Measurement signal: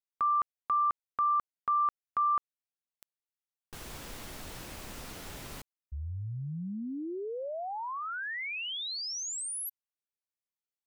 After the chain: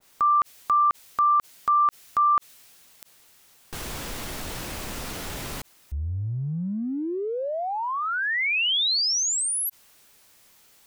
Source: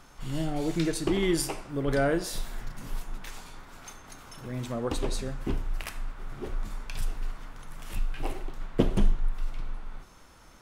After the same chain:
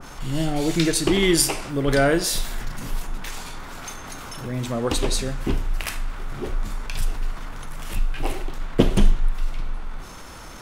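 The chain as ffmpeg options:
-filter_complex "[0:a]asplit=2[a][b];[b]acompressor=mode=upward:threshold=-29dB:ratio=2.5:attack=0.4:release=23:knee=2.83:detection=peak,volume=1dB[c];[a][c]amix=inputs=2:normalize=0,adynamicequalizer=threshold=0.0158:dfrequency=1800:dqfactor=0.7:tfrequency=1800:tqfactor=0.7:attack=5:release=100:ratio=0.375:range=3:mode=boostabove:tftype=highshelf"

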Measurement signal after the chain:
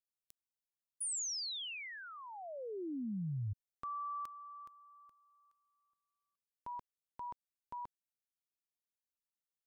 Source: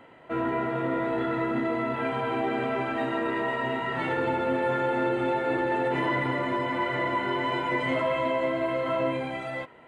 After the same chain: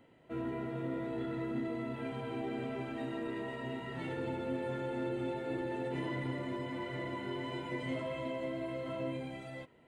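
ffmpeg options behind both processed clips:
-af "equalizer=f=1.2k:t=o:w=2.6:g=-13,volume=-4.5dB"

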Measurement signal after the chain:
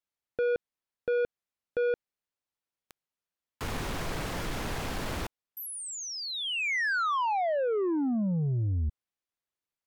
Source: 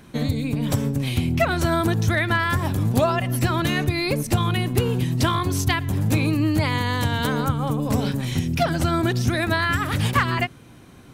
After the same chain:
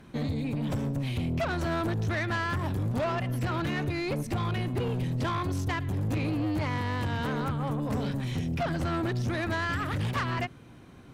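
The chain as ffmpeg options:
-filter_complex "[0:a]aemphasis=mode=reproduction:type=cd,acrossover=split=2500[a][b];[b]acompressor=threshold=-34dB:ratio=4:attack=1:release=60[c];[a][c]amix=inputs=2:normalize=0,asoftclip=type=tanh:threshold=-21dB,volume=-4dB"

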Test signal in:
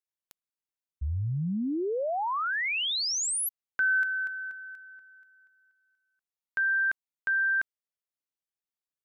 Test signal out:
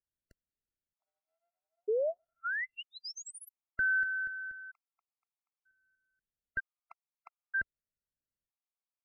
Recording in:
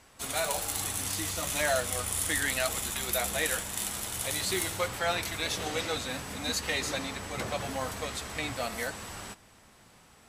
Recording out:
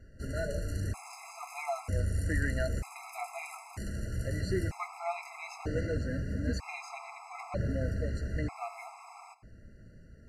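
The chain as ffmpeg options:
-af "asuperstop=centerf=3400:order=8:qfactor=2.7,aemphasis=mode=reproduction:type=riaa,afftfilt=real='re*gt(sin(2*PI*0.53*pts/sr)*(1-2*mod(floor(b*sr/1024/680),2)),0)':imag='im*gt(sin(2*PI*0.53*pts/sr)*(1-2*mod(floor(b*sr/1024/680),2)),0)':win_size=1024:overlap=0.75,volume=-2.5dB"

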